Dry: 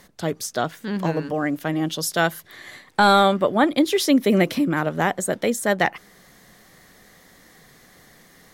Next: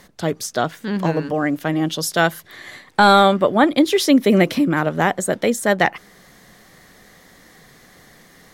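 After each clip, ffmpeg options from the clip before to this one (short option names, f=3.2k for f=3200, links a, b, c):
-af "highshelf=f=8.9k:g=-4,volume=3.5dB"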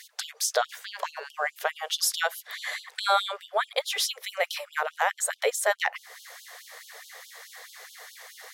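-af "acompressor=threshold=-28dB:ratio=2.5,afftfilt=real='re*gte(b*sr/1024,400*pow(2900/400,0.5+0.5*sin(2*PI*4.7*pts/sr)))':imag='im*gte(b*sr/1024,400*pow(2900/400,0.5+0.5*sin(2*PI*4.7*pts/sr)))':win_size=1024:overlap=0.75,volume=5dB"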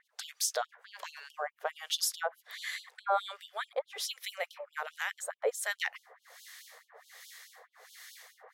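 -filter_complex "[0:a]acrossover=split=1400[a][b];[a]aeval=exprs='val(0)*(1-1/2+1/2*cos(2*PI*1.3*n/s))':c=same[c];[b]aeval=exprs='val(0)*(1-1/2-1/2*cos(2*PI*1.3*n/s))':c=same[d];[c][d]amix=inputs=2:normalize=0,volume=-3dB"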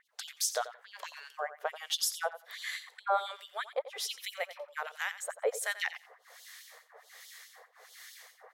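-af "aecho=1:1:88|176:0.2|0.0319"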